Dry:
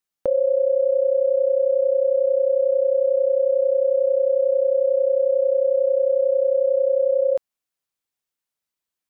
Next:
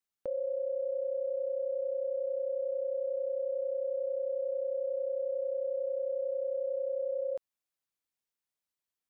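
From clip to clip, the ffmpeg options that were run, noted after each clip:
ffmpeg -i in.wav -af "alimiter=limit=-22dB:level=0:latency=1:release=79,volume=-6dB" out.wav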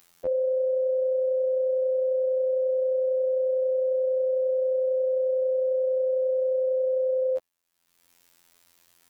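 ffmpeg -i in.wav -af "acontrast=71,afftfilt=real='hypot(re,im)*cos(PI*b)':imag='0':win_size=2048:overlap=0.75,acompressor=mode=upward:threshold=-44dB:ratio=2.5,volume=5.5dB" out.wav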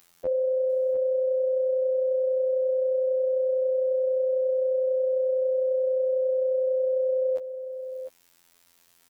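ffmpeg -i in.wav -af "aecho=1:1:701:0.299" out.wav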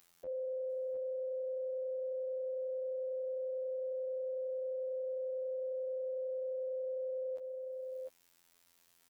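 ffmpeg -i in.wav -af "alimiter=level_in=3dB:limit=-24dB:level=0:latency=1:release=68,volume=-3dB,volume=-7.5dB" out.wav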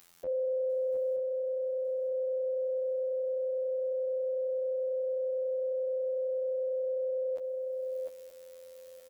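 ffmpeg -i in.wav -af "aecho=1:1:926|1852|2778|3704:0.2|0.0878|0.0386|0.017,volume=7.5dB" out.wav

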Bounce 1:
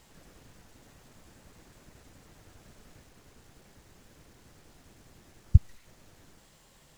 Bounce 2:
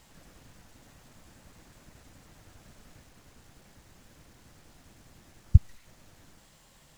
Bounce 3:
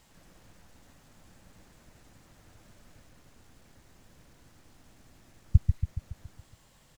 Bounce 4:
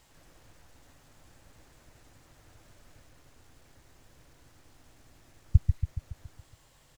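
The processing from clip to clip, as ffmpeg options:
ffmpeg -i in.wav -af "equalizer=frequency=410:width=2.8:gain=-4.5,volume=1dB" out.wav
ffmpeg -i in.wav -filter_complex "[0:a]asplit=2[link_01][link_02];[link_02]adelay=140,lowpass=frequency=2000:poles=1,volume=-5.5dB,asplit=2[link_03][link_04];[link_04]adelay=140,lowpass=frequency=2000:poles=1,volume=0.54,asplit=2[link_05][link_06];[link_06]adelay=140,lowpass=frequency=2000:poles=1,volume=0.54,asplit=2[link_07][link_08];[link_08]adelay=140,lowpass=frequency=2000:poles=1,volume=0.54,asplit=2[link_09][link_10];[link_10]adelay=140,lowpass=frequency=2000:poles=1,volume=0.54,asplit=2[link_11][link_12];[link_12]adelay=140,lowpass=frequency=2000:poles=1,volume=0.54,asplit=2[link_13][link_14];[link_14]adelay=140,lowpass=frequency=2000:poles=1,volume=0.54[link_15];[link_01][link_03][link_05][link_07][link_09][link_11][link_13][link_15]amix=inputs=8:normalize=0,volume=-3.5dB" out.wav
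ffmpeg -i in.wav -af "equalizer=frequency=200:width=5:gain=-13.5" out.wav

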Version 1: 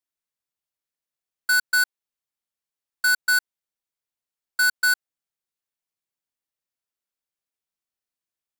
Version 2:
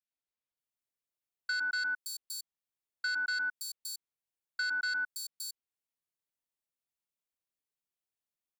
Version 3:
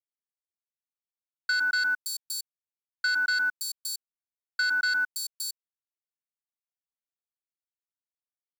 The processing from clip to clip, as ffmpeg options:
ffmpeg -i in.wav -filter_complex "[0:a]acrossover=split=1500|5000[link_01][link_02][link_03];[link_01]adelay=110[link_04];[link_03]adelay=570[link_05];[link_04][link_02][link_05]amix=inputs=3:normalize=0,acrossover=split=1000|5700[link_06][link_07][link_08];[link_06]acompressor=threshold=-47dB:ratio=4[link_09];[link_07]acompressor=threshold=-27dB:ratio=4[link_10];[link_08]acompressor=threshold=-40dB:ratio=4[link_11];[link_09][link_10][link_11]amix=inputs=3:normalize=0,volume=-4.5dB" out.wav
ffmpeg -i in.wav -af "acrusher=bits=9:mix=0:aa=0.000001,volume=7dB" out.wav

